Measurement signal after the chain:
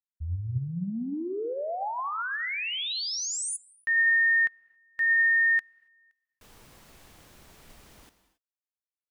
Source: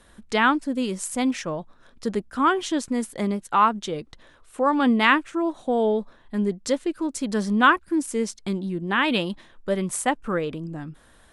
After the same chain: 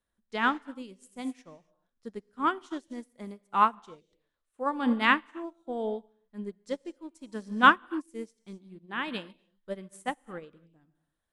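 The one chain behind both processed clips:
reverb whose tail is shaped and stops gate 300 ms flat, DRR 11 dB
expander for the loud parts 2.5 to 1, over −33 dBFS

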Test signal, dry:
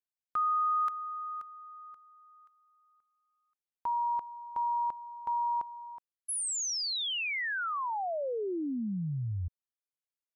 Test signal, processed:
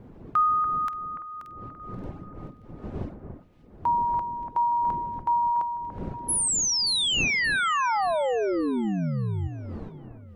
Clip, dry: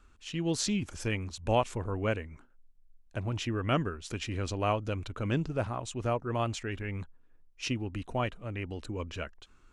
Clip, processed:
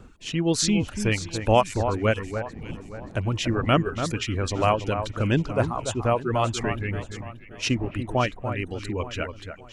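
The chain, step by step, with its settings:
wind on the microphone 270 Hz −49 dBFS
reverb reduction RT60 1.1 s
on a send: delay that swaps between a low-pass and a high-pass 289 ms, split 2,000 Hz, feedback 58%, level −8 dB
on the sum: level +8.5 dB

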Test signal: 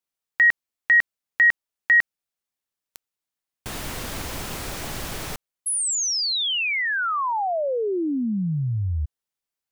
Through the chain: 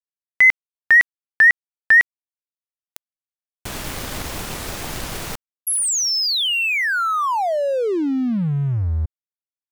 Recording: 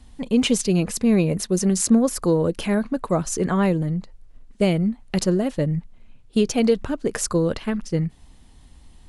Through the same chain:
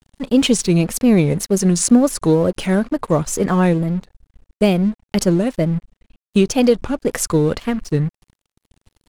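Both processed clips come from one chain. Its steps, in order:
dead-zone distortion −42 dBFS
tape wow and flutter 2.1 Hz 140 cents
level +5 dB

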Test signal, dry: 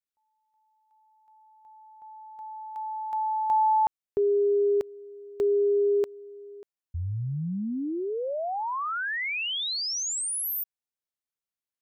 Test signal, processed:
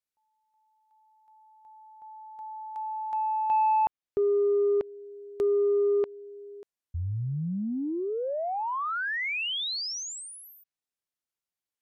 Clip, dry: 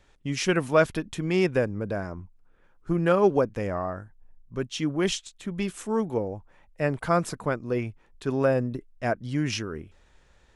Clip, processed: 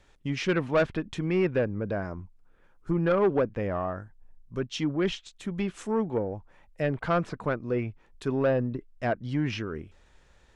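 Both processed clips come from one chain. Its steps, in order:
treble cut that deepens with the level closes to 2,800 Hz, closed at −24.5 dBFS
soft clipping −16.5 dBFS

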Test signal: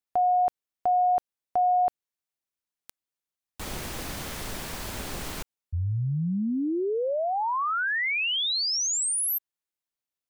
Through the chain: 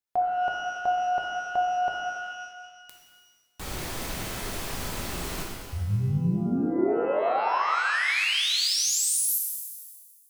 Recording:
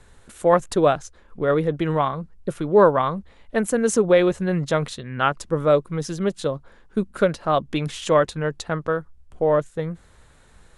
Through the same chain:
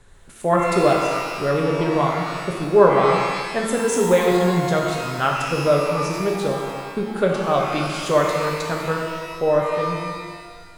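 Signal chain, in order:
reverb with rising layers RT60 1.6 s, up +12 semitones, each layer −8 dB, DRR −0.5 dB
level −2 dB

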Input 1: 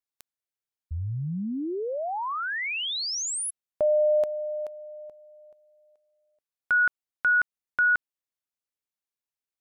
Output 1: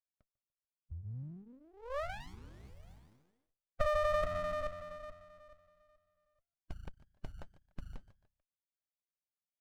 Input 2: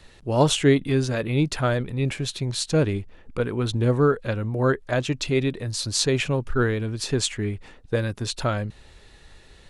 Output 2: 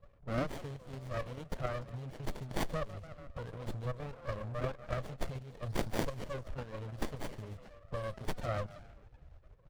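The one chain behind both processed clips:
spectral magnitudes quantised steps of 30 dB
output level in coarse steps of 10 dB
high-shelf EQ 4,100 Hz −11.5 dB
echo with shifted repeats 146 ms, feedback 46%, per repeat +87 Hz, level −21.5 dB
flanger 1.3 Hz, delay 0.7 ms, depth 7 ms, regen −64%
downward compressor 6 to 1, threshold −37 dBFS
low-pass that shuts in the quiet parts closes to 670 Hz, open at −37.5 dBFS
drawn EQ curve 130 Hz 0 dB, 360 Hz −20 dB, 580 Hz +12 dB, 1,700 Hz −1 dB, 5,600 Hz +15 dB
windowed peak hold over 33 samples
level +2 dB

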